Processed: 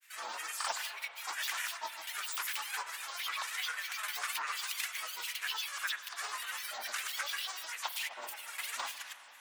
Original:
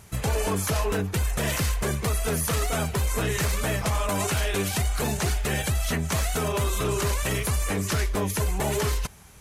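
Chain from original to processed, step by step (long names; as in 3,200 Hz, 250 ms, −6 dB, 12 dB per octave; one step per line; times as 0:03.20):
reversed playback
upward compression, threshold −41 dBFS
reversed playback
four-pole ladder high-pass 1,300 Hz, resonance 45%
granular cloud, pitch spread up and down by 12 semitones
spring reverb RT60 3.6 s, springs 48/52 ms, chirp 30 ms, DRR 11.5 dB
level +1.5 dB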